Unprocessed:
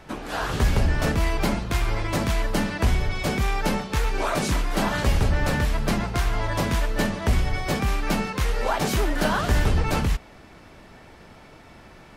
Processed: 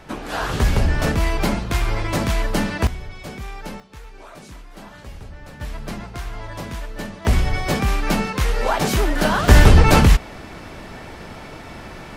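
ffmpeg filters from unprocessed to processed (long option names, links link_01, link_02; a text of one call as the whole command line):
ffmpeg -i in.wav -af "asetnsamples=nb_out_samples=441:pad=0,asendcmd='2.87 volume volume -9dB;3.8 volume volume -16.5dB;5.61 volume volume -7dB;7.25 volume volume 4dB;9.48 volume volume 11dB',volume=3dB" out.wav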